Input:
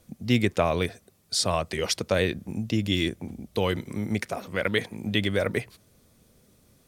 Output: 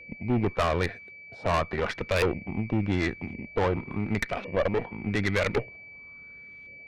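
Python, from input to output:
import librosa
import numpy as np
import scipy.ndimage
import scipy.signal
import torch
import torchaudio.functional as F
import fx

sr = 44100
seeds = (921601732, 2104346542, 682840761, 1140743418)

y = fx.filter_lfo_lowpass(x, sr, shape='saw_up', hz=0.9, low_hz=510.0, high_hz=2700.0, q=3.4)
y = y + 10.0 ** (-43.0 / 20.0) * np.sin(2.0 * np.pi * 2300.0 * np.arange(len(y)) / sr)
y = fx.tube_stage(y, sr, drive_db=24.0, bias=0.8)
y = F.gain(torch.from_numpy(y), 4.0).numpy()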